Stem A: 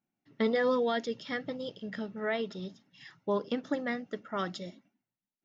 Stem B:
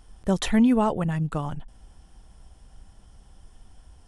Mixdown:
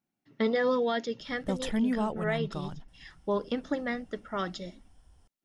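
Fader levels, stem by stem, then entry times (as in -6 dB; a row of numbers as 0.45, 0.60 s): +1.0, -9.0 dB; 0.00, 1.20 s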